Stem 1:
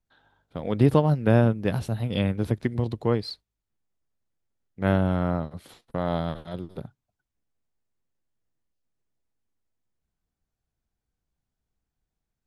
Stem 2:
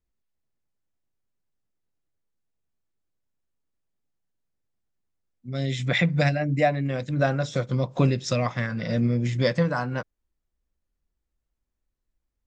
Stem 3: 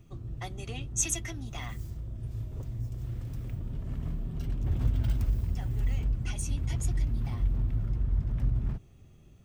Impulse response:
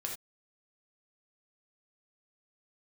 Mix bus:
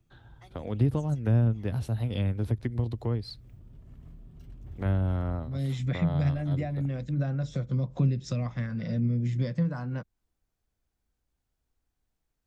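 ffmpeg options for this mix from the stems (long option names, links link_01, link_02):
-filter_complex "[0:a]equalizer=frequency=170:width_type=o:width=0.56:gain=-9.5,volume=2dB[link_01];[1:a]equalizer=frequency=190:width=0.57:gain=6.5,volume=-6.5dB,asplit=2[link_02][link_03];[2:a]volume=-14.5dB[link_04];[link_03]apad=whole_len=416409[link_05];[link_04][link_05]sidechaincompress=threshold=-37dB:ratio=8:attack=16:release=390[link_06];[link_01][link_02][link_06]amix=inputs=3:normalize=0,acrossover=split=200[link_07][link_08];[link_08]acompressor=threshold=-39dB:ratio=3[link_09];[link_07][link_09]amix=inputs=2:normalize=0"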